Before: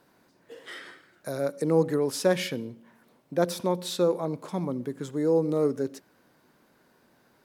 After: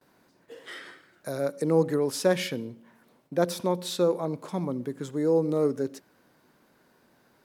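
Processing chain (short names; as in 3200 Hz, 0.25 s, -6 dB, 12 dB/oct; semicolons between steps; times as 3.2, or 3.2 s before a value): gate with hold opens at -54 dBFS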